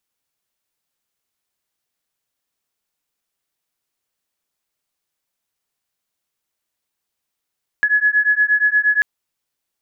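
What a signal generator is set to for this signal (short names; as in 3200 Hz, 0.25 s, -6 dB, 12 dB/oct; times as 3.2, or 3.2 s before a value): beating tones 1690 Hz, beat 8.5 Hz, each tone -16 dBFS 1.19 s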